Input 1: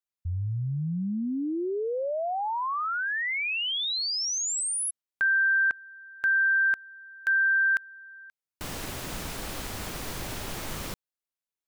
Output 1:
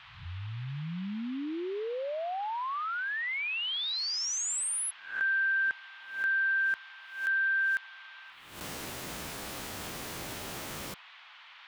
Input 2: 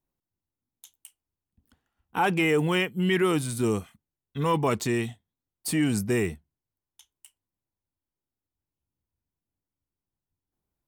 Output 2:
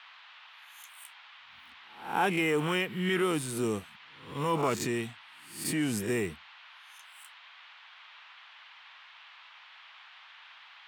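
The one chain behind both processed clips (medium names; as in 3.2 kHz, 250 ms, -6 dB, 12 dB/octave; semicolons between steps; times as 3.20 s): reverse spectral sustain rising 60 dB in 0.50 s; high-pass 130 Hz 6 dB/octave; band noise 860–3500 Hz -48 dBFS; trim -5 dB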